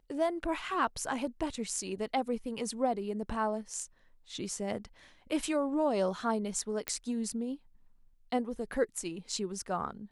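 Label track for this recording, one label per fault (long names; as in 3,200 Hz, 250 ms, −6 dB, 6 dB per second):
6.880000	6.880000	click −14 dBFS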